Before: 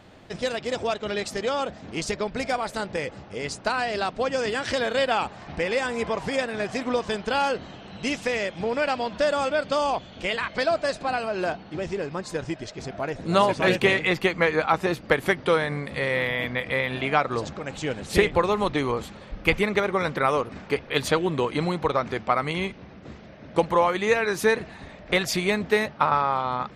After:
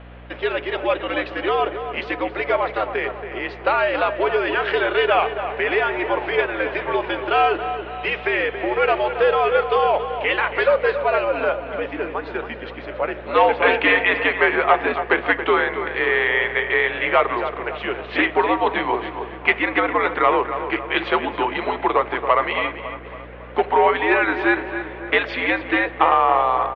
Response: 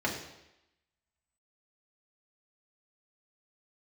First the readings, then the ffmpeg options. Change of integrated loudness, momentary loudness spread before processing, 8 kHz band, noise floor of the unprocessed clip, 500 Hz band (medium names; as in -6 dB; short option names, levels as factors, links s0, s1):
+5.0 dB, 10 LU, under -30 dB, -45 dBFS, +4.5 dB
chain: -filter_complex "[0:a]asoftclip=type=tanh:threshold=0.237,asplit=2[s0][s1];[s1]adelay=277,lowpass=f=2300:p=1,volume=0.355,asplit=2[s2][s3];[s3]adelay=277,lowpass=f=2300:p=1,volume=0.53,asplit=2[s4][s5];[s5]adelay=277,lowpass=f=2300:p=1,volume=0.53,asplit=2[s6][s7];[s7]adelay=277,lowpass=f=2300:p=1,volume=0.53,asplit=2[s8][s9];[s9]adelay=277,lowpass=f=2300:p=1,volume=0.53,asplit=2[s10][s11];[s11]adelay=277,lowpass=f=2300:p=1,volume=0.53[s12];[s0][s2][s4][s6][s8][s10][s12]amix=inputs=7:normalize=0,highpass=f=530:t=q:w=0.5412,highpass=f=530:t=q:w=1.307,lowpass=f=3200:t=q:w=0.5176,lowpass=f=3200:t=q:w=0.7071,lowpass=f=3200:t=q:w=1.932,afreqshift=-100,asplit=2[s13][s14];[1:a]atrim=start_sample=2205,adelay=7[s15];[s14][s15]afir=irnorm=-1:irlink=0,volume=0.075[s16];[s13][s16]amix=inputs=2:normalize=0,aeval=exprs='val(0)+0.00398*(sin(2*PI*60*n/s)+sin(2*PI*2*60*n/s)/2+sin(2*PI*3*60*n/s)/3+sin(2*PI*4*60*n/s)/4+sin(2*PI*5*60*n/s)/5)':c=same,volume=2.51"